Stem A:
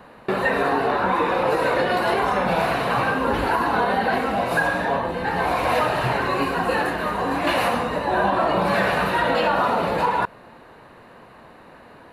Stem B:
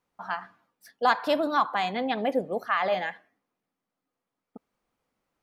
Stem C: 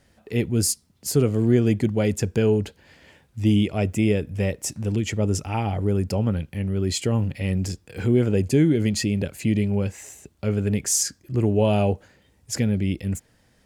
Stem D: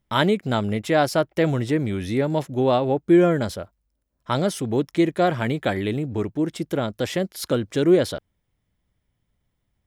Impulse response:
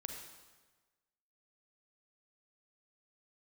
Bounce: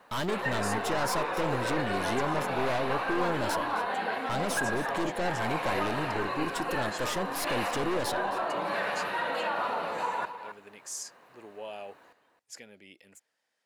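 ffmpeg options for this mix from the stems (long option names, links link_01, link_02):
-filter_complex "[0:a]highpass=frequency=580:poles=1,acrusher=bits=9:mix=0:aa=0.000001,volume=-9dB,asplit=2[link_01][link_02];[link_02]volume=-10.5dB[link_03];[1:a]adelay=2150,volume=-14dB[link_04];[2:a]highpass=670,volume=-14dB[link_05];[3:a]lowshelf=frequency=170:gain=-9.5,crystalizer=i=1.5:c=0,aeval=exprs='(tanh(25.1*val(0)+0.4)-tanh(0.4))/25.1':channel_layout=same,volume=-1dB,asplit=2[link_06][link_07];[link_07]volume=-15.5dB[link_08];[link_03][link_08]amix=inputs=2:normalize=0,aecho=0:1:266:1[link_09];[link_01][link_04][link_05][link_06][link_09]amix=inputs=5:normalize=0,highshelf=frequency=9400:gain=-7"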